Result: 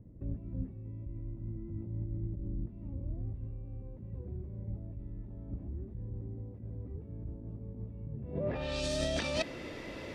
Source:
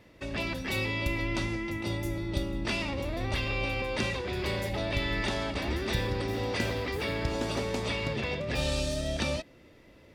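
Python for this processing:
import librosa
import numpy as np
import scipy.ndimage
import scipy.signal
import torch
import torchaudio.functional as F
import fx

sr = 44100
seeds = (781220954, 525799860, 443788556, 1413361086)

y = fx.low_shelf(x, sr, hz=160.0, db=-6.0)
y = fx.over_compress(y, sr, threshold_db=-40.0, ratio=-1.0)
y = fx.filter_sweep_lowpass(y, sr, from_hz=140.0, to_hz=8700.0, start_s=8.21, end_s=8.85, q=0.72)
y = y * librosa.db_to_amplitude(7.5)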